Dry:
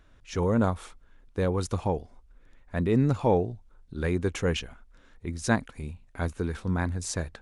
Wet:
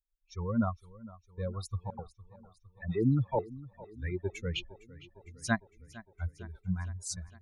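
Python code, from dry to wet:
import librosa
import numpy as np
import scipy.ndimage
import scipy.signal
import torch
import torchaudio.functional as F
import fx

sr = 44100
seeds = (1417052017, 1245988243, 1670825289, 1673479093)

y = fx.bin_expand(x, sr, power=3.0)
y = fx.dispersion(y, sr, late='lows', ms=88.0, hz=2500.0, at=(1.9, 3.39))
y = fx.echo_warbled(y, sr, ms=457, feedback_pct=63, rate_hz=2.8, cents=52, wet_db=-19.0)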